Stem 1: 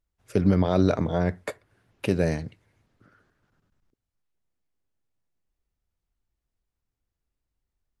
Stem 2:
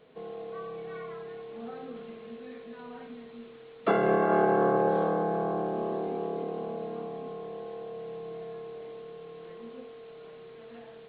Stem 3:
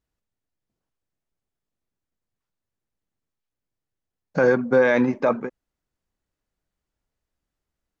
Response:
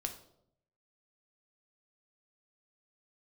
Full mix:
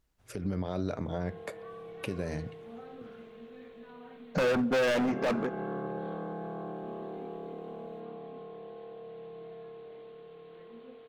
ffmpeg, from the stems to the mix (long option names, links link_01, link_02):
-filter_complex "[0:a]bandreject=frequency=161.3:width_type=h:width=4,bandreject=frequency=322.6:width_type=h:width=4,bandreject=frequency=483.9:width_type=h:width=4,bandreject=frequency=645.2:width_type=h:width=4,bandreject=frequency=806.5:width_type=h:width=4,bandreject=frequency=967.8:width_type=h:width=4,bandreject=frequency=1129.1:width_type=h:width=4,bandreject=frequency=1290.4:width_type=h:width=4,bandreject=frequency=1451.7:width_type=h:width=4,bandreject=frequency=1613:width_type=h:width=4,bandreject=frequency=1774.3:width_type=h:width=4,bandreject=frequency=1935.6:width_type=h:width=4,bandreject=frequency=2096.9:width_type=h:width=4,bandreject=frequency=2258.2:width_type=h:width=4,bandreject=frequency=2419.5:width_type=h:width=4,bandreject=frequency=2580.8:width_type=h:width=4,bandreject=frequency=2742.1:width_type=h:width=4,bandreject=frequency=2903.4:width_type=h:width=4,bandreject=frequency=3064.7:width_type=h:width=4,bandreject=frequency=3226:width_type=h:width=4,bandreject=frequency=3387.3:width_type=h:width=4,acompressor=threshold=-35dB:ratio=2.5,volume=1dB[link_01];[1:a]adynamicequalizer=threshold=0.01:dfrequency=1500:dqfactor=0.86:tfrequency=1500:tqfactor=0.86:attack=5:release=100:ratio=0.375:range=2:mode=boostabove:tftype=bell,acrossover=split=290|3000[link_02][link_03][link_04];[link_03]acompressor=threshold=-36dB:ratio=3[link_05];[link_02][link_05][link_04]amix=inputs=3:normalize=0,adelay=1100,volume=-5.5dB[link_06];[2:a]asoftclip=type=hard:threshold=-24dB,volume=2dB,asplit=2[link_07][link_08];[link_08]volume=-12dB[link_09];[3:a]atrim=start_sample=2205[link_10];[link_09][link_10]afir=irnorm=-1:irlink=0[link_11];[link_01][link_06][link_07][link_11]amix=inputs=4:normalize=0,alimiter=limit=-23dB:level=0:latency=1:release=113"